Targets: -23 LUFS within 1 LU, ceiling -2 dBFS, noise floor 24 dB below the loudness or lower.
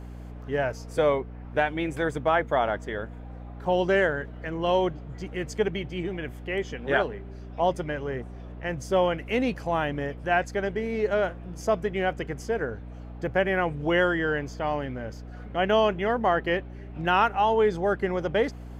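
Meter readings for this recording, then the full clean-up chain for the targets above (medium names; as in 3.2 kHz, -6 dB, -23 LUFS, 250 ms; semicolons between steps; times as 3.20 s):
hum 60 Hz; highest harmonic 300 Hz; hum level -38 dBFS; loudness -27.0 LUFS; peak level -9.0 dBFS; loudness target -23.0 LUFS
-> hum notches 60/120/180/240/300 Hz; trim +4 dB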